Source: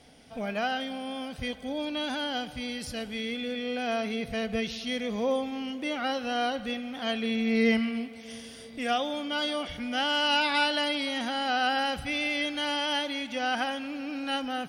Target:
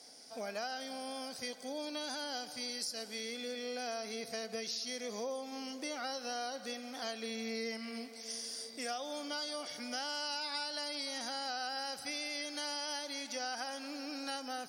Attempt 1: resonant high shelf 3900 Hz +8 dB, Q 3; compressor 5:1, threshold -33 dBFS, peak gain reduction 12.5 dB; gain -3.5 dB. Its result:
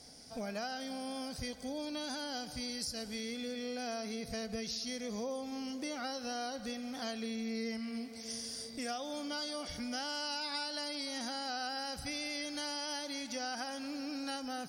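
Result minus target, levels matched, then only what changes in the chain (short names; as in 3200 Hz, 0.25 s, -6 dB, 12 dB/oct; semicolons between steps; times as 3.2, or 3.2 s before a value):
250 Hz band +5.0 dB
add first: HPF 350 Hz 12 dB/oct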